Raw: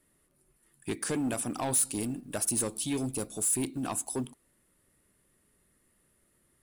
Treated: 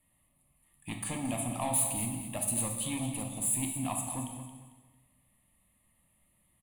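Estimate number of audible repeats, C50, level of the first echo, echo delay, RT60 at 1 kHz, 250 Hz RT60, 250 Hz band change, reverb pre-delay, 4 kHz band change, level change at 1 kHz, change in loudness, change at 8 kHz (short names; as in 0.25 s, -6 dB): 3, 4.5 dB, -10.5 dB, 0.224 s, 1.3 s, 1.4 s, -3.0 dB, 11 ms, -2.0 dB, +1.0 dB, -1.5 dB, -1.5 dB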